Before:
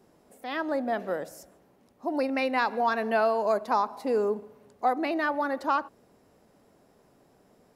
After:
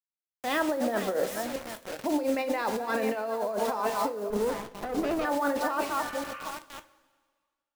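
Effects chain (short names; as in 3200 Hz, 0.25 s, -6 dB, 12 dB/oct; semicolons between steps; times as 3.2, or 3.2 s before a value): regenerating reverse delay 0.39 s, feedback 43%, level -10 dB; dynamic EQ 490 Hz, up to +7 dB, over -42 dBFS, Q 3.5; bit-crush 7-bit; negative-ratio compressor -29 dBFS, ratio -1; 6.09–6.5 spectral repair 1000–3100 Hz both; two-slope reverb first 0.22 s, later 1.7 s, from -18 dB, DRR 8.5 dB; 4.3–5.25 running maximum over 17 samples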